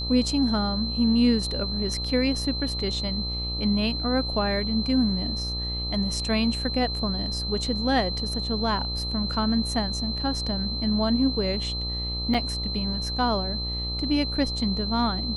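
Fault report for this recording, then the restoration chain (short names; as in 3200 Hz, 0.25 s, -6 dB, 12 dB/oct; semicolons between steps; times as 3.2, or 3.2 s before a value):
buzz 60 Hz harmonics 22 -32 dBFS
tone 4100 Hz -30 dBFS
12.34–12.35 gap 5.7 ms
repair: de-hum 60 Hz, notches 22; notch 4100 Hz, Q 30; interpolate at 12.34, 5.7 ms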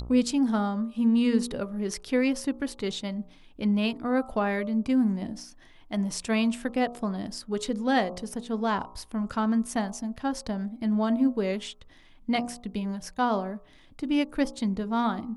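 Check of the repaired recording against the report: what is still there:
none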